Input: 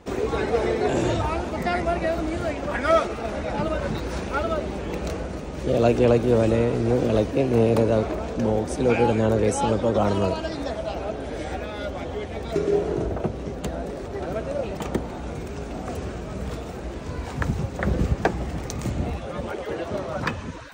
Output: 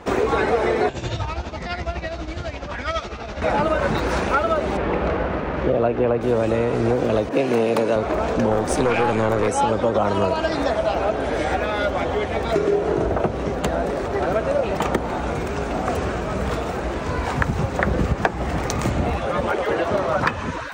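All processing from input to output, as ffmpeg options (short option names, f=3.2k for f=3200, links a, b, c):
-filter_complex "[0:a]asettb=1/sr,asplit=3[a][b][c];[a]atrim=end=0.894[d];[b]atrim=start=0.89:end=3.42,asetpts=PTS-STARTPTS,afade=t=in:d=0.004:c=qsin,afade=t=out:st=2.526:d=0.004:c=qsin,tremolo=f=12:d=0.65,lowpass=f=6.2k:w=0.5412,lowpass=f=6.2k:w=1.3066,acrossover=split=140|3000[e][f][g];[f]acompressor=threshold=-49dB:ratio=2:attack=3.2:release=140:knee=2.83:detection=peak[h];[e][h][g]amix=inputs=3:normalize=0[i];[c]atrim=start=3.416[j];[d][i]acrossfade=d=0.004:c1=hsin:c2=qsin[k];[k][j]acrossfade=d=0.004:c1=qsin:c2=hsin,asettb=1/sr,asplit=3[l][m][n];[l]atrim=end=4.774[o];[m]atrim=start=4.77:end=6.21,asetpts=PTS-STARTPTS,afade=t=in:d=0.004:c=qsin,afade=t=out:st=1.436:d=0.004:c=qsin,acrusher=bits=5:mix=0:aa=0.5,lowpass=2.2k[p];[n]atrim=start=6.206[q];[o][p]acrossfade=d=0.004:c1=hsin:c2=qsin[r];[r][q]acrossfade=d=0.004:c1=qsin:c2=hsin,asettb=1/sr,asplit=3[s][t][u];[s]atrim=end=7.294[v];[t]atrim=start=7.29:end=7.96,asetpts=PTS-STARTPTS,afade=t=in:d=0.004:c=qsin,afade=t=out:st=0.666:d=0.004:c=qsin,highpass=f=140:w=0.5412,highpass=f=140:w=1.3066,adynamicequalizer=threshold=0.0141:dfrequency=1700:dqfactor=0.7:tfrequency=1700:tqfactor=0.7:attack=5:release=100:ratio=0.375:range=2.5:mode=boostabove:tftype=highshelf[w];[u]atrim=start=7.956[x];[v][w]acrossfade=d=0.004:c1=hsin:c2=qsin[y];[y][x]acrossfade=d=0.004:c1=qsin:c2=hsin,asettb=1/sr,asplit=3[z][aa][ab];[z]atrim=end=8.514[ac];[aa]atrim=start=8.51:end=9.48,asetpts=PTS-STARTPTS,afade=t=in:d=0.004:c=qsin,afade=t=out:st=0.966:d=0.004:c=qsin,highshelf=f=8.7k:g=7,acontrast=29,aeval=exprs='(tanh(5.01*val(0)+0.5)-tanh(0.5))/5.01':c=same[ad];[ab]atrim=start=9.476[ae];[ac][ad]acrossfade=d=0.004:c1=hsin:c2=qsin[af];[af][ae]acrossfade=d=0.004:c1=qsin:c2=hsin,equalizer=f=1.2k:w=0.49:g=8,acompressor=threshold=-21dB:ratio=6,volume=5dB"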